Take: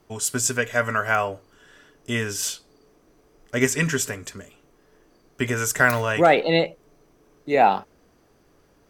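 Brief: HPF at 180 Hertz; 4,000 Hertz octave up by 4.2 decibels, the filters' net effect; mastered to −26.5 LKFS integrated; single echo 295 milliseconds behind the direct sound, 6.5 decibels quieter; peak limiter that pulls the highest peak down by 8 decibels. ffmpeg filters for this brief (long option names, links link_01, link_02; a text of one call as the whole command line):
ffmpeg -i in.wav -af "highpass=180,equalizer=frequency=4000:width_type=o:gain=5.5,alimiter=limit=-11.5dB:level=0:latency=1,aecho=1:1:295:0.473,volume=-2dB" out.wav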